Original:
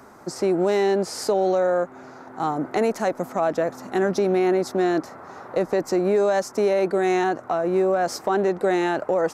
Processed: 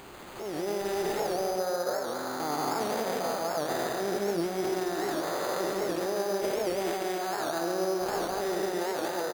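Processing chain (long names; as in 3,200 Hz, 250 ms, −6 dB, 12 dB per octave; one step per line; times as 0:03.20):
spectrum averaged block by block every 400 ms
low-shelf EQ 430 Hz −11 dB
downward compressor, threshold −33 dBFS, peak gain reduction 9.5 dB
brickwall limiter −32.5 dBFS, peak gain reduction 10 dB
automatic gain control gain up to 11 dB
on a send: repeating echo 140 ms, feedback 58%, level −5 dB
on the sum: bad sample-rate conversion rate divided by 8×, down none, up hold
wow of a warped record 78 rpm, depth 160 cents
level −2 dB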